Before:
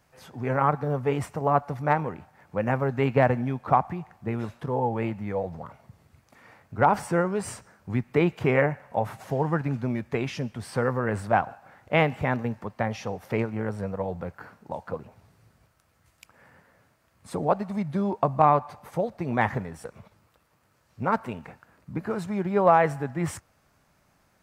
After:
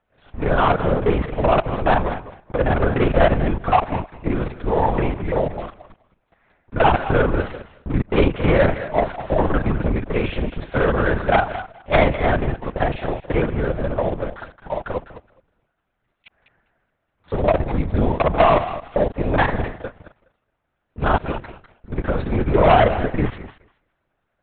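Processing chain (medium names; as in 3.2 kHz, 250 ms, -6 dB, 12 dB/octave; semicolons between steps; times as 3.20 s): time reversed locally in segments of 38 ms; small resonant body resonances 640/1500 Hz, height 7 dB; waveshaping leveller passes 3; on a send: thinning echo 208 ms, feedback 16%, high-pass 320 Hz, level -12 dB; on the sum: LPC vocoder at 8 kHz whisper; trim -2.5 dB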